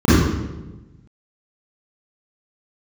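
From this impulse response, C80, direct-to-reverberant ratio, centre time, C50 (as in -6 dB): -1.5 dB, -14.0 dB, 111 ms, -7.0 dB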